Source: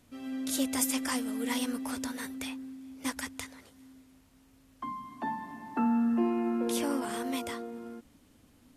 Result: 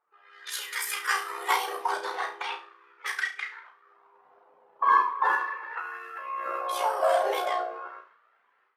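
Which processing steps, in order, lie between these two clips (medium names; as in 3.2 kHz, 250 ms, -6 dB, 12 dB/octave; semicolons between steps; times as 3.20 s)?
high-pass 78 Hz 24 dB/octave; level-controlled noise filter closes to 970 Hz, open at -29 dBFS; graphic EQ 125/1000/8000 Hz +6/+6/-7 dB; level rider gain up to 16 dB; peak limiter -10.5 dBFS, peak gain reduction 8 dB; flange 0.46 Hz, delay 1.4 ms, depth 2.7 ms, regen +43%; AM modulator 63 Hz, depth 95%; LFO high-pass sine 0.38 Hz 630–1700 Hz; formant-preserving pitch shift +7.5 st; on a send: flutter echo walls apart 6 m, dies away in 0.32 s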